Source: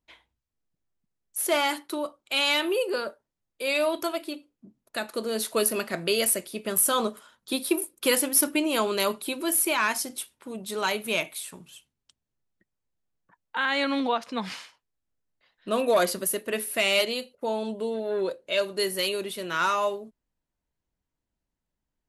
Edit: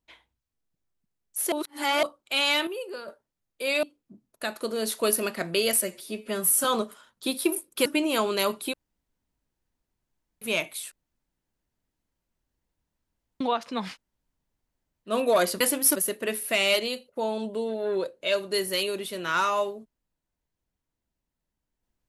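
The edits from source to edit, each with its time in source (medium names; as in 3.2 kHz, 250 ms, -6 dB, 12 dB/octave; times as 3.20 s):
1.52–2.03 s: reverse
2.67–3.08 s: gain -9 dB
3.83–4.36 s: delete
6.35–6.90 s: stretch 1.5×
8.11–8.46 s: move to 16.21 s
9.34–11.02 s: room tone
11.52–14.01 s: room tone
14.53–15.70 s: room tone, crossfade 0.10 s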